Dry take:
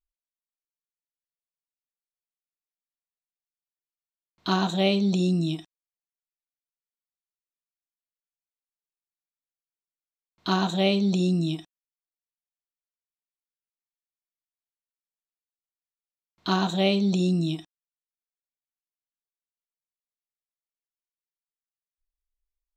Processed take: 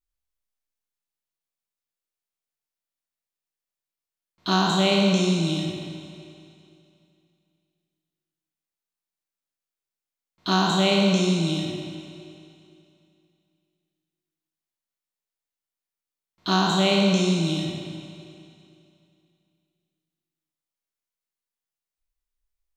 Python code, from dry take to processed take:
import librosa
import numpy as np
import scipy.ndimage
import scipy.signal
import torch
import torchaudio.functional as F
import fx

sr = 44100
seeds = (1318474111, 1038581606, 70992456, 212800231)

y = fx.spec_trails(x, sr, decay_s=1.21)
y = fx.rev_schroeder(y, sr, rt60_s=2.6, comb_ms=32, drr_db=5.5)
y = fx.dynamic_eq(y, sr, hz=6500.0, q=0.89, threshold_db=-41.0, ratio=4.0, max_db=4)